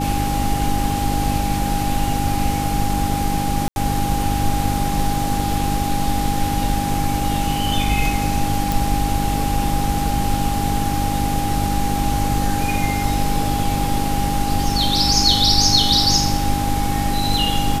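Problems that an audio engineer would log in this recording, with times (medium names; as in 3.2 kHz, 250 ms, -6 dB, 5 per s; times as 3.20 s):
hum 50 Hz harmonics 6 -24 dBFS
whine 810 Hz -23 dBFS
3.68–3.76 s: dropout 81 ms
8.72 s: pop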